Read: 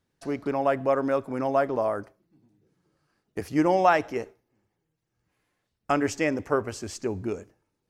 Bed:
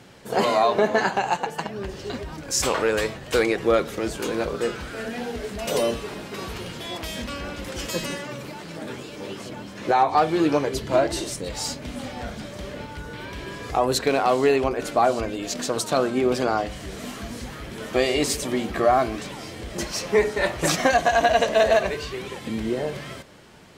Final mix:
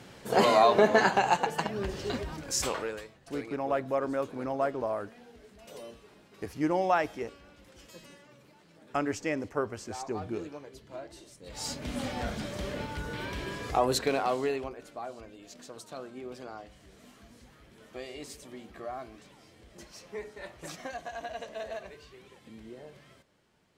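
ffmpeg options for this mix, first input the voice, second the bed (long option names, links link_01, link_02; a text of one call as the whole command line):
ffmpeg -i stem1.wav -i stem2.wav -filter_complex "[0:a]adelay=3050,volume=-6dB[link_01];[1:a]volume=20dB,afade=type=out:start_time=2.11:duration=0.94:silence=0.0891251,afade=type=in:start_time=11.4:duration=0.58:silence=0.0841395,afade=type=out:start_time=13.24:duration=1.59:silence=0.105925[link_02];[link_01][link_02]amix=inputs=2:normalize=0" out.wav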